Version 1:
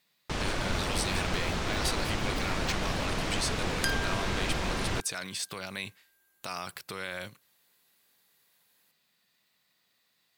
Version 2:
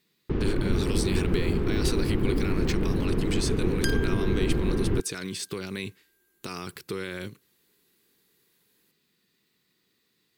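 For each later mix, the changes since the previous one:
first sound: add tape spacing loss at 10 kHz 44 dB; master: add resonant low shelf 500 Hz +7.5 dB, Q 3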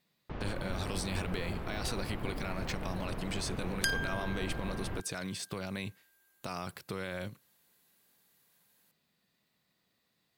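speech: add tilt shelf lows +6.5 dB, about 630 Hz; first sound -5.5 dB; master: add resonant low shelf 500 Hz -7.5 dB, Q 3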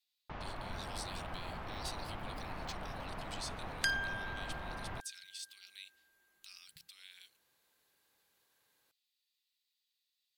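speech: add ladder high-pass 2.6 kHz, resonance 30%; first sound: add resonant low shelf 580 Hz -6.5 dB, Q 1.5; second sound: add treble shelf 8 kHz -11.5 dB

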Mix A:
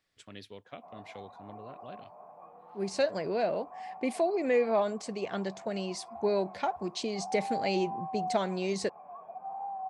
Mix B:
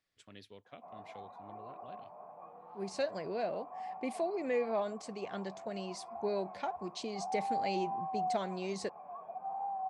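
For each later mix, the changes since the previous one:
speech -6.5 dB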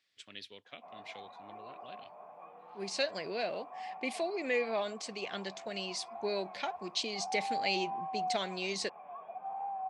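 master: add frequency weighting D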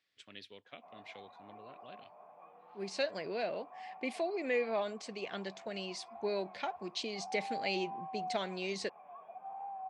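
speech: add treble shelf 3 kHz -8 dB; background -5.0 dB

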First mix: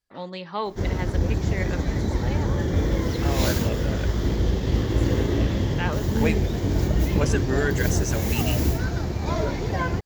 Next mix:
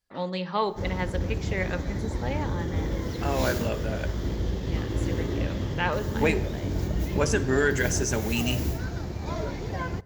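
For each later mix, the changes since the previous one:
background -7.0 dB; reverb: on, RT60 1.3 s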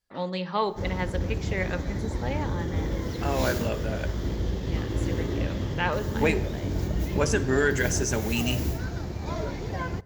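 no change

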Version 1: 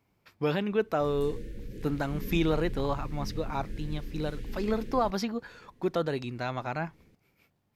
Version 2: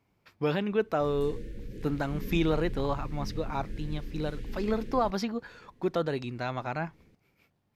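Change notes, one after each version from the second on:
master: add treble shelf 8.6 kHz -5.5 dB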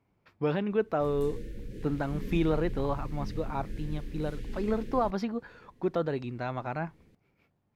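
speech: add low-pass 1.7 kHz 6 dB/octave; master: add treble shelf 8.6 kHz +5.5 dB

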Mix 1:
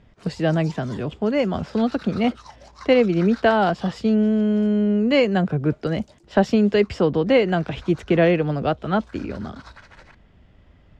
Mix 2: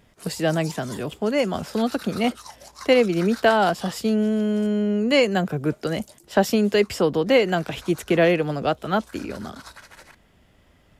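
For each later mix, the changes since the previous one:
speech: add bass shelf 170 Hz -8.5 dB; master: remove distance through air 140 m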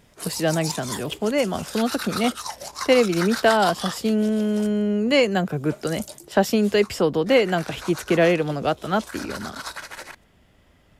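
background +9.5 dB

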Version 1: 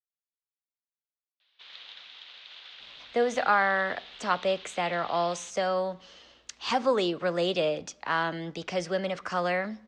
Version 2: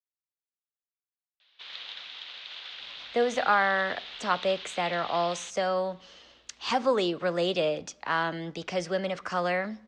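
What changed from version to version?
background +5.5 dB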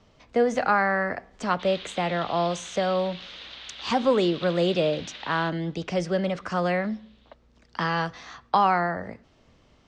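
speech: entry -2.80 s; master: add bass shelf 320 Hz +11.5 dB

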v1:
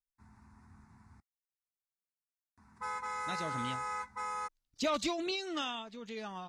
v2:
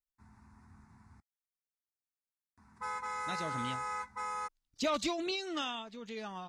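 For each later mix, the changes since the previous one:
no change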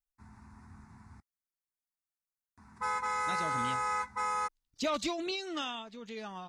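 background +5.5 dB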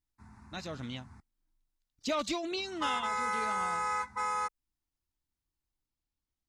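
speech: entry -2.75 s

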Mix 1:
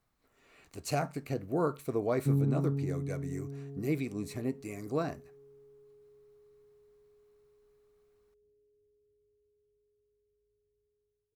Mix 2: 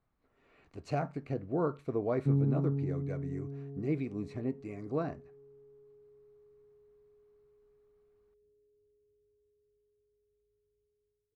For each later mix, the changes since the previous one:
speech: add tape spacing loss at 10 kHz 26 dB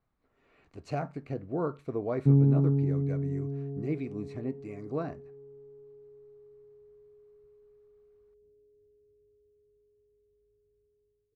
background +7.0 dB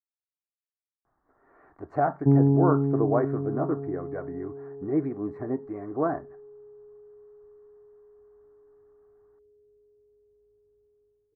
speech: entry +1.05 s; master: add FFT filter 220 Hz 0 dB, 330 Hz +10 dB, 490 Hz +4 dB, 750 Hz +13 dB, 1.8 kHz +8 dB, 2.6 kHz -21 dB

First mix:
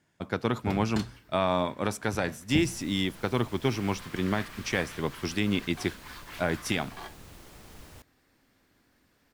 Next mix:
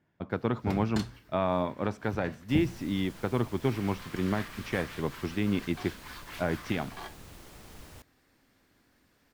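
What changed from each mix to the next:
speech: add tape spacing loss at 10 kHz 27 dB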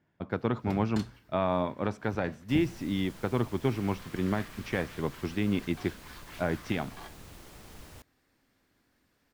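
first sound -4.5 dB

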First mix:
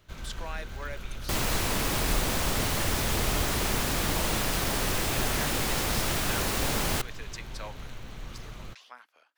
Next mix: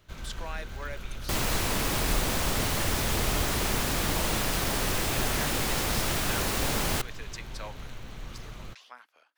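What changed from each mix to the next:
no change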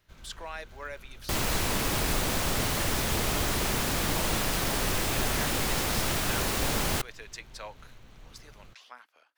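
first sound -10.5 dB

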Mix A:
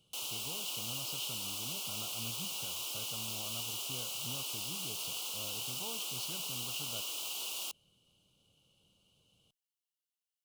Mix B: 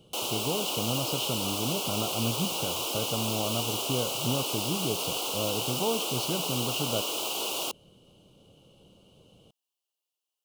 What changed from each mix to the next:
master: remove amplifier tone stack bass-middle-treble 5-5-5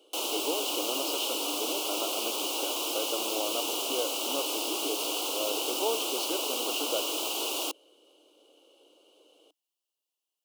background: remove high-pass 340 Hz 24 dB/octave; master: add Chebyshev high-pass 300 Hz, order 5

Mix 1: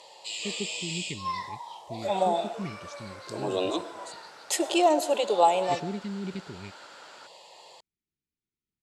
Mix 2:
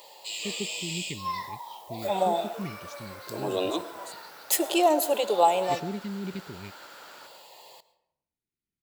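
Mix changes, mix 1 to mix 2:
second sound: send on; master: remove low-pass 8.8 kHz 24 dB/octave

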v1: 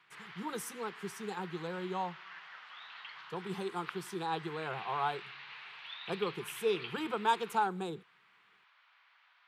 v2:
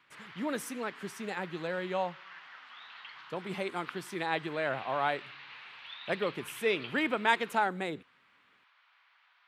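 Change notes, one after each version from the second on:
speech: remove static phaser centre 400 Hz, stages 8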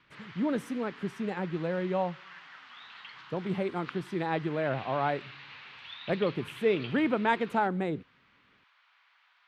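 speech: add tilt EQ -3.5 dB/octave; background: remove distance through air 54 m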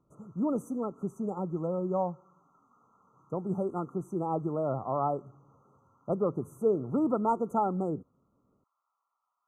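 background -11.5 dB; master: add brick-wall FIR band-stop 1.4–5.9 kHz

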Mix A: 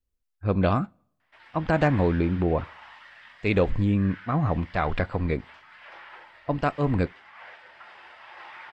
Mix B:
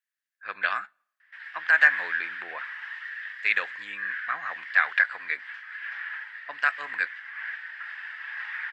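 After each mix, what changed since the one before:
master: add resonant high-pass 1.7 kHz, resonance Q 7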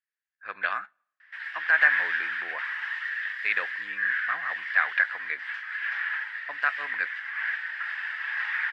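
speech: add low-pass 2.3 kHz 6 dB/octave; background +5.5 dB

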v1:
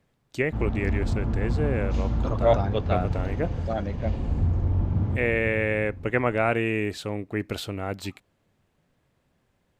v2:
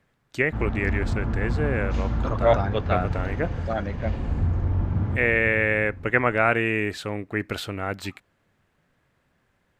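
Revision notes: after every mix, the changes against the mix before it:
master: add peaking EQ 1.6 kHz +7.5 dB 1.2 oct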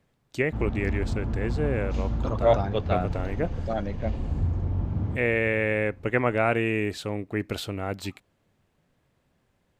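background: send -9.5 dB; master: add peaking EQ 1.6 kHz -7.5 dB 1.2 oct

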